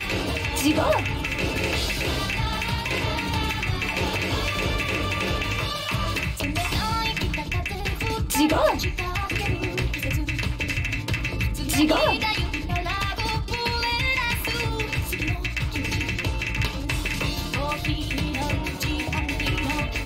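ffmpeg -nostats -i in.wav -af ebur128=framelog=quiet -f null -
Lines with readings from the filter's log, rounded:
Integrated loudness:
  I:         -24.8 LUFS
  Threshold: -34.8 LUFS
Loudness range:
  LRA:         2.3 LU
  Threshold: -44.8 LUFS
  LRA low:   -26.2 LUFS
  LRA high:  -23.9 LUFS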